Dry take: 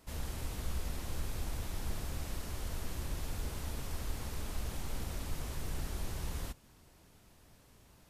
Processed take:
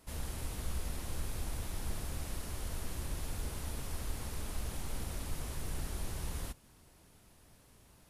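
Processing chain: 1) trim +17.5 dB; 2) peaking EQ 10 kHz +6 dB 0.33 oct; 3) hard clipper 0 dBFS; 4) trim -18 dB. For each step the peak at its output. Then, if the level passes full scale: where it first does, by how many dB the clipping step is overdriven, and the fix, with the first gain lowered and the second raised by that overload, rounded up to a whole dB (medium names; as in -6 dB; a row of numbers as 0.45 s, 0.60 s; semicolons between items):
-6.0 dBFS, -6.0 dBFS, -6.0 dBFS, -24.0 dBFS; nothing clips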